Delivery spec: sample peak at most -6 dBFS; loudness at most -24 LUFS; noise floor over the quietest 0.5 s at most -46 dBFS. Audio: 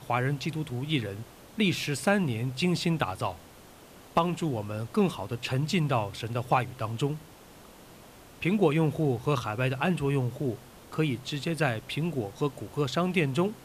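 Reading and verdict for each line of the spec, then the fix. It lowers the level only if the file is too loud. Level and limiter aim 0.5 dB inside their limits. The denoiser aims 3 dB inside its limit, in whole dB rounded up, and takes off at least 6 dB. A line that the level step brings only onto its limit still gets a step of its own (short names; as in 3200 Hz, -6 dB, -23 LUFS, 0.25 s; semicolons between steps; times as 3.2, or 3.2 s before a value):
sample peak -11.0 dBFS: OK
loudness -29.0 LUFS: OK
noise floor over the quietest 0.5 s -51 dBFS: OK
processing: none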